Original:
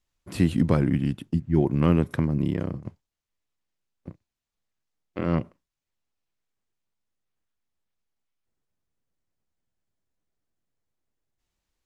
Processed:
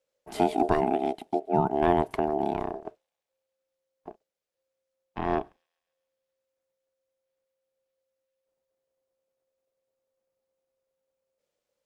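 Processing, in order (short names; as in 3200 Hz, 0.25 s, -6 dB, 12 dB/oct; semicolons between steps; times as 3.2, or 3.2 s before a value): ring modulator 530 Hz; thin delay 0.135 s, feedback 63%, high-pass 5200 Hz, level -21 dB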